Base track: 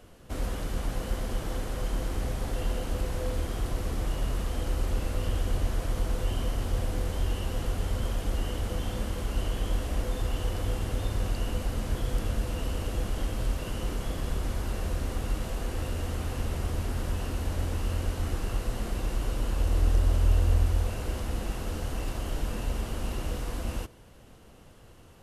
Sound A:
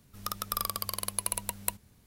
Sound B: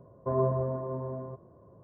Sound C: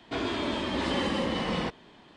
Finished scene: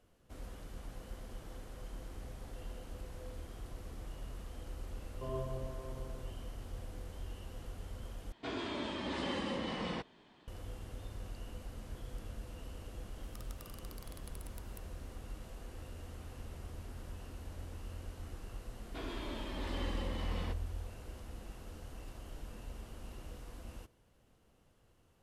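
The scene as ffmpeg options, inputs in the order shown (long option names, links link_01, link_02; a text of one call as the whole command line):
ffmpeg -i bed.wav -i cue0.wav -i cue1.wav -i cue2.wav -filter_complex "[3:a]asplit=2[link_01][link_02];[0:a]volume=-16dB[link_03];[1:a]acompressor=threshold=-38dB:ratio=6:attack=3.2:release=140:knee=1:detection=peak[link_04];[link_03]asplit=2[link_05][link_06];[link_05]atrim=end=8.324[link_07];[link_01]atrim=end=2.16,asetpts=PTS-STARTPTS,volume=-9dB[link_08];[link_06]atrim=start=10.476[link_09];[2:a]atrim=end=1.83,asetpts=PTS-STARTPTS,volume=-13.5dB,afade=type=in:duration=0.004:curve=hsin,afade=type=out:start_time=1.826:duration=0.004:curve=hsin,adelay=4950[link_10];[link_04]atrim=end=2.06,asetpts=PTS-STARTPTS,volume=-13dB,afade=type=in:duration=0.004:curve=hsin,afade=type=out:start_time=2.056:duration=0.004:curve=hsin,adelay=13090[link_11];[link_02]atrim=end=2.16,asetpts=PTS-STARTPTS,volume=-13.5dB,afade=type=in:duration=0.004:curve=hsin,afade=type=out:start_time=2.156:duration=0.004:curve=hsin,adelay=18830[link_12];[link_07][link_08]acrossfade=duration=0.004:curve1=hsin:curve2=hsin[link_13];[link_13][link_09]acrossfade=duration=0.004:curve1=hsin:curve2=hsin[link_14];[link_14][link_10][link_11][link_12]amix=inputs=4:normalize=0" out.wav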